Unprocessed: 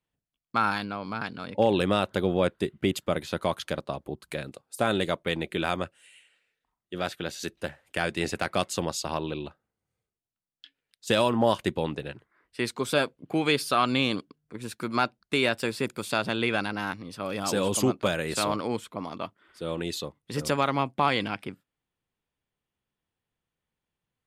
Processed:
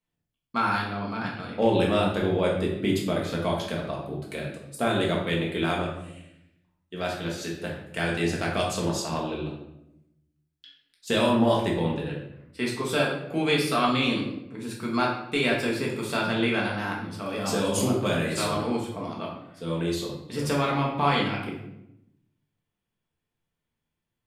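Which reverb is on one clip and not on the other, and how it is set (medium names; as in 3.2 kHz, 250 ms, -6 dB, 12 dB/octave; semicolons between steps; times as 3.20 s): simulated room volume 240 m³, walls mixed, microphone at 1.6 m; trim -4 dB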